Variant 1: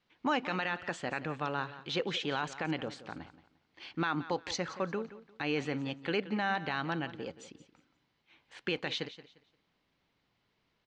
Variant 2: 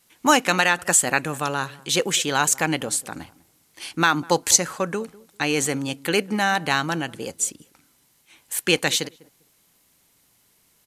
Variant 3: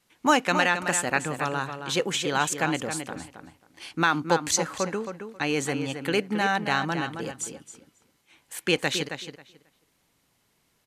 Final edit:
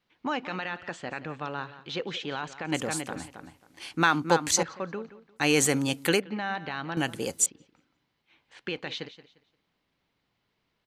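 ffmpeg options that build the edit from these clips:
-filter_complex "[1:a]asplit=2[s0][s1];[0:a]asplit=4[s2][s3][s4][s5];[s2]atrim=end=2.722[s6];[2:a]atrim=start=2.718:end=4.632[s7];[s3]atrim=start=4.628:end=5.46[s8];[s0]atrim=start=5.36:end=6.22[s9];[s4]atrim=start=6.12:end=6.972[s10];[s1]atrim=start=6.968:end=7.462[s11];[s5]atrim=start=7.458[s12];[s6][s7]acrossfade=d=0.004:c1=hsin:c2=hsin[s13];[s13][s8]acrossfade=d=0.004:c1=hsin:c2=hsin[s14];[s14][s9]acrossfade=d=0.1:c1=tri:c2=tri[s15];[s15][s10]acrossfade=d=0.1:c1=tri:c2=tri[s16];[s16][s11]acrossfade=d=0.004:c1=hsin:c2=hsin[s17];[s17][s12]acrossfade=d=0.004:c1=hsin:c2=hsin"

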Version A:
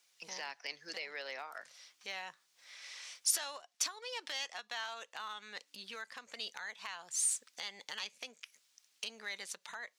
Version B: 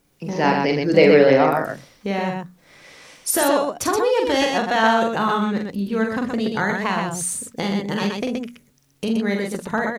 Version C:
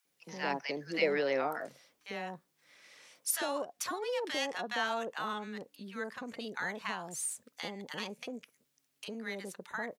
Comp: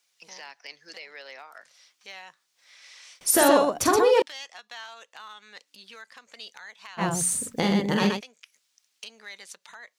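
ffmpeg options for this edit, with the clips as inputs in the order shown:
-filter_complex "[1:a]asplit=2[s0][s1];[0:a]asplit=3[s2][s3][s4];[s2]atrim=end=3.212[s5];[s0]atrim=start=3.208:end=4.222[s6];[s3]atrim=start=4.218:end=7.03[s7];[s1]atrim=start=6.97:end=8.21[s8];[s4]atrim=start=8.15[s9];[s5][s6]acrossfade=d=0.004:c1=hsin:c2=hsin[s10];[s10][s7]acrossfade=d=0.004:c1=hsin:c2=hsin[s11];[s11][s8]acrossfade=d=0.06:c1=tri:c2=tri[s12];[s12][s9]acrossfade=d=0.06:c1=tri:c2=tri"

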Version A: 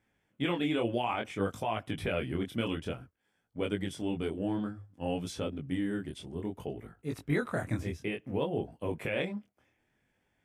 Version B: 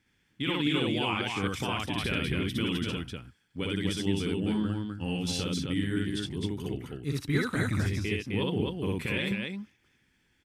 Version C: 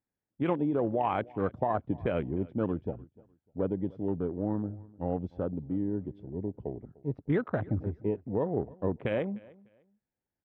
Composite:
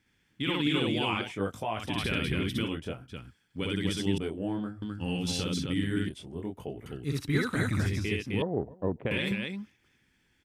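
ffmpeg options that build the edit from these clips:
-filter_complex "[0:a]asplit=4[s0][s1][s2][s3];[1:a]asplit=6[s4][s5][s6][s7][s8][s9];[s4]atrim=end=1.33[s10];[s0]atrim=start=1.17:end=1.9[s11];[s5]atrim=start=1.74:end=2.71[s12];[s1]atrim=start=2.61:end=3.17[s13];[s6]atrim=start=3.07:end=4.182[s14];[s2]atrim=start=4.178:end=4.822[s15];[s7]atrim=start=4.818:end=6.092[s16];[s3]atrim=start=6.088:end=6.862[s17];[s8]atrim=start=6.858:end=8.422[s18];[2:a]atrim=start=8.418:end=9.112[s19];[s9]atrim=start=9.108[s20];[s10][s11]acrossfade=d=0.16:c1=tri:c2=tri[s21];[s21][s12]acrossfade=d=0.16:c1=tri:c2=tri[s22];[s22][s13]acrossfade=d=0.1:c1=tri:c2=tri[s23];[s23][s14]acrossfade=d=0.1:c1=tri:c2=tri[s24];[s24][s15]acrossfade=d=0.004:c1=hsin:c2=hsin[s25];[s25][s16]acrossfade=d=0.004:c1=hsin:c2=hsin[s26];[s26][s17]acrossfade=d=0.004:c1=hsin:c2=hsin[s27];[s27][s18]acrossfade=d=0.004:c1=hsin:c2=hsin[s28];[s28][s19]acrossfade=d=0.004:c1=hsin:c2=hsin[s29];[s29][s20]acrossfade=d=0.004:c1=hsin:c2=hsin"

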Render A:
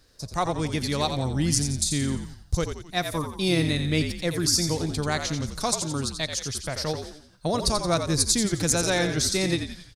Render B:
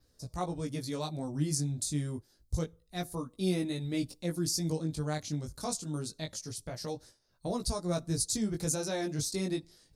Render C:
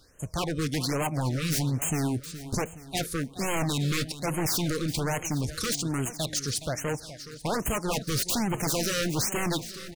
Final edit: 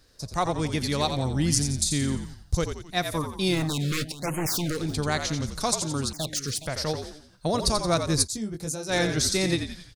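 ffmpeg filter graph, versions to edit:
-filter_complex "[2:a]asplit=2[s0][s1];[0:a]asplit=4[s2][s3][s4][s5];[s2]atrim=end=3.71[s6];[s0]atrim=start=3.47:end=4.97[s7];[s3]atrim=start=4.73:end=6.132[s8];[s1]atrim=start=6.128:end=6.662[s9];[s4]atrim=start=6.658:end=8.28[s10];[1:a]atrim=start=8.22:end=8.94[s11];[s5]atrim=start=8.88[s12];[s6][s7]acrossfade=d=0.24:c1=tri:c2=tri[s13];[s13][s8]acrossfade=d=0.24:c1=tri:c2=tri[s14];[s14][s9]acrossfade=d=0.004:c1=hsin:c2=hsin[s15];[s15][s10]acrossfade=d=0.004:c1=hsin:c2=hsin[s16];[s16][s11]acrossfade=d=0.06:c1=tri:c2=tri[s17];[s17][s12]acrossfade=d=0.06:c1=tri:c2=tri"

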